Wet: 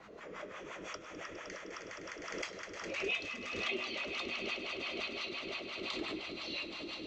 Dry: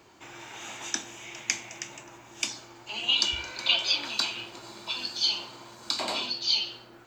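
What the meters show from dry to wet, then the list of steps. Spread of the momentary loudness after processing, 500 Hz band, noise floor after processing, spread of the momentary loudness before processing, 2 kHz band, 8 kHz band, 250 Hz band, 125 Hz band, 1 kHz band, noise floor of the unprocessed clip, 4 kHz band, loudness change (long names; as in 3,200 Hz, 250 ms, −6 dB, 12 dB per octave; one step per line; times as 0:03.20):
10 LU, +1.5 dB, −50 dBFS, 19 LU, −4.0 dB, −18.0 dB, +0.5 dB, −5.0 dB, −6.5 dB, −52 dBFS, −15.0 dB, −11.5 dB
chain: rotating-speaker cabinet horn 6.3 Hz, later 1.1 Hz, at 0:01.90
on a send: echo that builds up and dies away 103 ms, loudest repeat 8, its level −10.5 dB
on the sum: frequency shifter −310 Hz
in parallel at 0 dB: downward compressor, threshold −39 dBFS, peak gain reduction 17.5 dB
on the sum: LFO wah 5.8 Hz 350–1,100 Hz, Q 2.3
parametric band 850 Hz −10 dB 0.76 octaves
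hum removal 123.8 Hz, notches 35
background raised ahead of every attack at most 34 dB per second
level +4.5 dB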